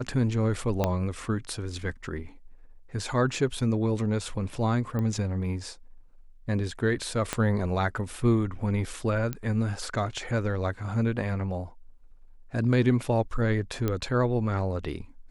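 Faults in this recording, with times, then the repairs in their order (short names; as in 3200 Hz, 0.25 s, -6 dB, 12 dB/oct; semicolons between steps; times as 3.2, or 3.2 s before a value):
0.84 pop -11 dBFS
4.99 pop -20 dBFS
7.33 pop -11 dBFS
9.33 pop -18 dBFS
13.88 pop -14 dBFS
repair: de-click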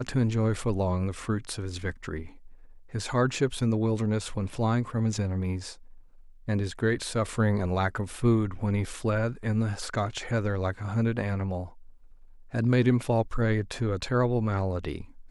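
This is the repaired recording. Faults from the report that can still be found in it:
0.84 pop
7.33 pop
13.88 pop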